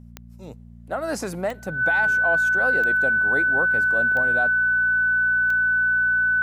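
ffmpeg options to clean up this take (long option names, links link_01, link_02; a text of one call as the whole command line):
ffmpeg -i in.wav -af "adeclick=threshold=4,bandreject=frequency=58.5:width_type=h:width=4,bandreject=frequency=117:width_type=h:width=4,bandreject=frequency=175.5:width_type=h:width=4,bandreject=frequency=234:width_type=h:width=4,bandreject=frequency=1500:width=30" out.wav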